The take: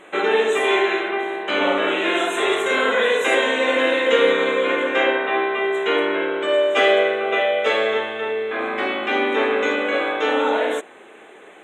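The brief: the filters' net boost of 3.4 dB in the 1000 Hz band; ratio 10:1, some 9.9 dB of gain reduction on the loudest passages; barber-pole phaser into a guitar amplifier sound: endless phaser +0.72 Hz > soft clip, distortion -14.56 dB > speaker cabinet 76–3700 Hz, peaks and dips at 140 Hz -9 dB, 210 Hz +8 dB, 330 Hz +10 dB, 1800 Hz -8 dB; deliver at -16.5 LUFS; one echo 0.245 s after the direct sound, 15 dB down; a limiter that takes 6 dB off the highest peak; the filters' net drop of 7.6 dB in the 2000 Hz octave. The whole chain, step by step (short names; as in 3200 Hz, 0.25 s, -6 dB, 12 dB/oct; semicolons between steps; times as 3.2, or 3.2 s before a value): bell 1000 Hz +6.5 dB; bell 2000 Hz -8 dB; compressor 10:1, threshold -21 dBFS; limiter -18.5 dBFS; echo 0.245 s -15 dB; endless phaser +0.72 Hz; soft clip -26.5 dBFS; speaker cabinet 76–3700 Hz, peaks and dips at 140 Hz -9 dB, 210 Hz +8 dB, 330 Hz +10 dB, 1800 Hz -8 dB; gain +14 dB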